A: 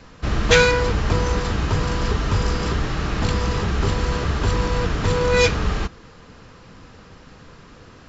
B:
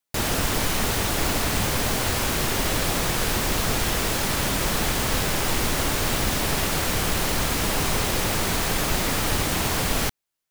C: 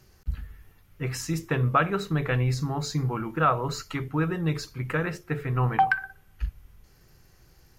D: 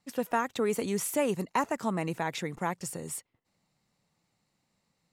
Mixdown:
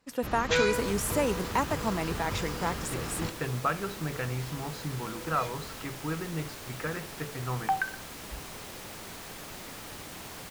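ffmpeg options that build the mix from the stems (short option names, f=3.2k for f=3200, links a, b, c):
-filter_complex "[0:a]volume=-11.5dB[a];[1:a]adelay=600,volume=-18dB[b];[2:a]lowpass=3.6k,adelay=1900,volume=-6.5dB[c];[3:a]volume=0.5dB,asplit=2[d][e];[e]apad=whole_len=356493[f];[a][f]sidechaingate=range=-14dB:threshold=-51dB:ratio=16:detection=peak[g];[g][b][c][d]amix=inputs=4:normalize=0,lowshelf=f=75:g=-11"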